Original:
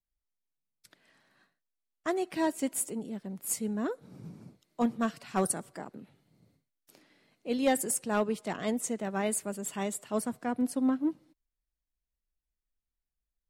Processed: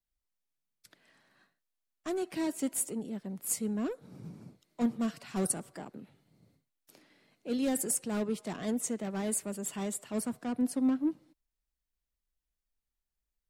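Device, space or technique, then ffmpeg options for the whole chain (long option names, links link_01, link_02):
one-band saturation: -filter_complex "[0:a]acrossover=split=420|4400[link_01][link_02][link_03];[link_02]asoftclip=type=tanh:threshold=-39.5dB[link_04];[link_01][link_04][link_03]amix=inputs=3:normalize=0"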